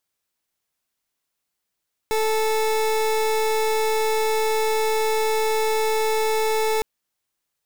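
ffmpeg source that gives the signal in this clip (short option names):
-f lavfi -i "aevalsrc='0.0891*(2*lt(mod(438*t,1),0.29)-1)':d=4.71:s=44100"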